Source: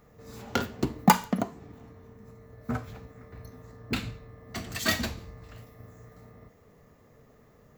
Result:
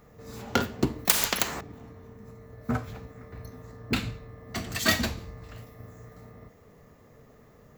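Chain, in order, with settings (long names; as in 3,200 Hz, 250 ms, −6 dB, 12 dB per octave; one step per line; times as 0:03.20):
0:01.05–0:01.61: every bin compressed towards the loudest bin 10 to 1
level +3 dB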